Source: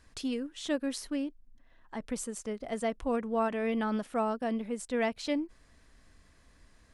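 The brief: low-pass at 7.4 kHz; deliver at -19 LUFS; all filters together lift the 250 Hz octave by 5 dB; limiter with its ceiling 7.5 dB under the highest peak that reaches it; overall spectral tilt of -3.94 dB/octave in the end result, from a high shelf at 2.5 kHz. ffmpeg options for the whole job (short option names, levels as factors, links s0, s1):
-af "lowpass=7400,equalizer=f=250:t=o:g=5.5,highshelf=f=2500:g=8,volume=4.73,alimiter=limit=0.316:level=0:latency=1"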